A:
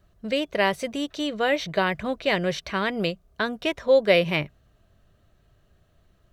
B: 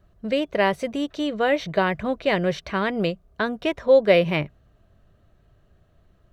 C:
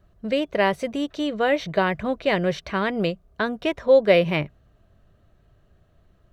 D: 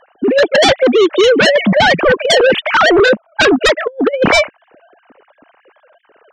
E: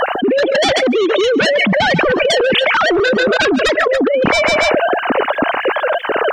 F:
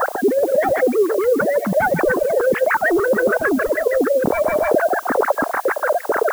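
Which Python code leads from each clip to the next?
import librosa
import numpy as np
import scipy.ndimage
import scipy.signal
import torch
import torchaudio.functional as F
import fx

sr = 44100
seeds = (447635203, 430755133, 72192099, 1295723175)

y1 = fx.high_shelf(x, sr, hz=2400.0, db=-8.5)
y1 = y1 * 10.0 ** (3.0 / 20.0)
y2 = y1
y3 = fx.sine_speech(y2, sr)
y3 = fx.over_compress(y3, sr, threshold_db=-27.0, ratio=-0.5)
y3 = fx.fold_sine(y3, sr, drive_db=12, ceiling_db=-13.0)
y3 = y3 * 10.0 ** (7.5 / 20.0)
y4 = fx.echo_feedback(y3, sr, ms=141, feedback_pct=23, wet_db=-24)
y4 = fx.env_flatten(y4, sr, amount_pct=100)
y4 = y4 * 10.0 ** (-6.0 / 20.0)
y5 = fx.filter_lfo_lowpass(y4, sr, shape='sine', hz=6.7, low_hz=430.0, high_hz=1900.0, q=2.3)
y5 = fx.band_shelf(y5, sr, hz=4300.0, db=-15.5, octaves=1.7)
y5 = fx.dmg_noise_colour(y5, sr, seeds[0], colour='blue', level_db=-33.0)
y5 = y5 * 10.0 ** (-6.0 / 20.0)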